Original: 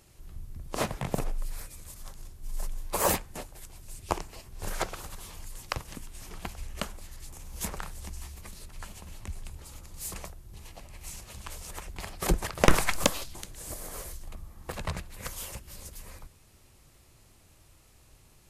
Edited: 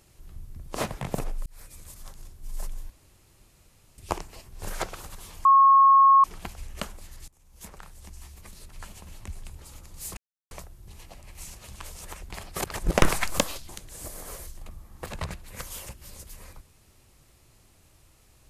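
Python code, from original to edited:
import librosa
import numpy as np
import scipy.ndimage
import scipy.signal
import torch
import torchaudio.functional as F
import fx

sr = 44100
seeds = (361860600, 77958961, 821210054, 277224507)

y = fx.edit(x, sr, fx.fade_in_span(start_s=1.46, length_s=0.3),
    fx.room_tone_fill(start_s=2.9, length_s=1.08),
    fx.bleep(start_s=5.45, length_s=0.79, hz=1090.0, db=-12.5),
    fx.fade_in_from(start_s=7.28, length_s=1.51, floor_db=-22.0),
    fx.insert_silence(at_s=10.17, length_s=0.34),
    fx.reverse_span(start_s=12.3, length_s=0.27), tone=tone)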